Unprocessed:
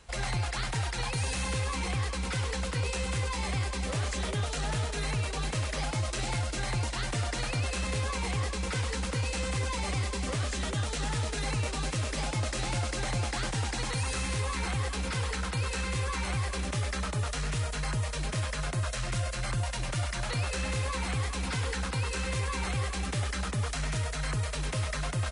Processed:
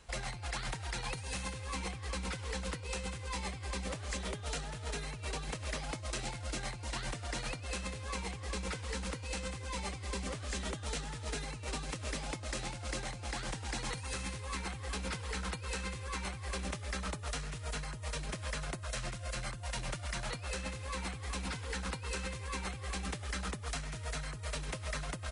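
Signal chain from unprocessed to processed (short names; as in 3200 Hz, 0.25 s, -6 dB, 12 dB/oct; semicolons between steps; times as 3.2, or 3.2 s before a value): negative-ratio compressor -33 dBFS, ratio -0.5; gain -5.5 dB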